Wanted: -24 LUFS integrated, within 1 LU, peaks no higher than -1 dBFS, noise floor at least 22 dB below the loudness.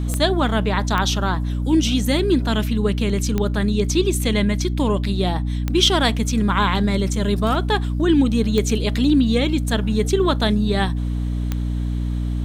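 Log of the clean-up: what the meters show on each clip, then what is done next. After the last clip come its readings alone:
clicks 6; hum 60 Hz; harmonics up to 300 Hz; hum level -20 dBFS; loudness -20.0 LUFS; peak -3.0 dBFS; loudness target -24.0 LUFS
-> de-click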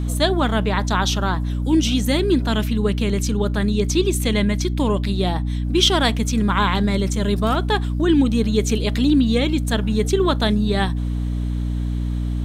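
clicks 0; hum 60 Hz; harmonics up to 300 Hz; hum level -20 dBFS
-> de-hum 60 Hz, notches 5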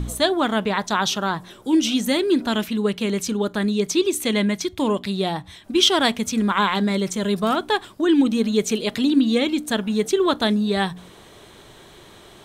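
hum none; loudness -21.0 LUFS; peak -3.5 dBFS; loudness target -24.0 LUFS
-> gain -3 dB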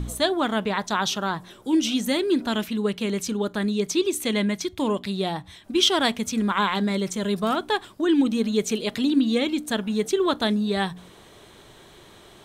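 loudness -24.0 LUFS; peak -6.5 dBFS; noise floor -50 dBFS

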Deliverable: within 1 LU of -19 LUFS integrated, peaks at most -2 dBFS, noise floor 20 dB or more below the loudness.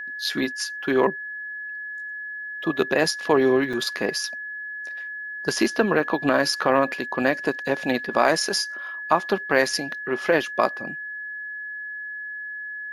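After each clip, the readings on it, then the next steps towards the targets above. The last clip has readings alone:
dropouts 1; longest dropout 5.6 ms; steady tone 1700 Hz; tone level -31 dBFS; loudness -24.5 LUFS; peak -3.0 dBFS; loudness target -19.0 LUFS
-> interpolate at 3.73, 5.6 ms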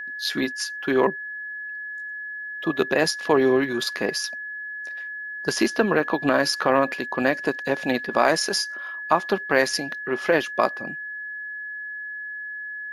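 dropouts 0; steady tone 1700 Hz; tone level -31 dBFS
-> notch 1700 Hz, Q 30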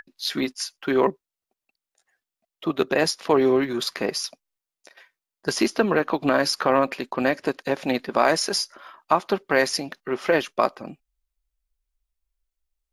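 steady tone none; loudness -23.5 LUFS; peak -3.5 dBFS; loudness target -19.0 LUFS
-> gain +4.5 dB; limiter -2 dBFS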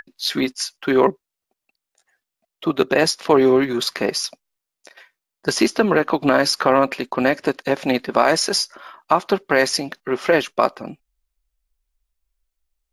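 loudness -19.5 LUFS; peak -2.0 dBFS; noise floor -85 dBFS

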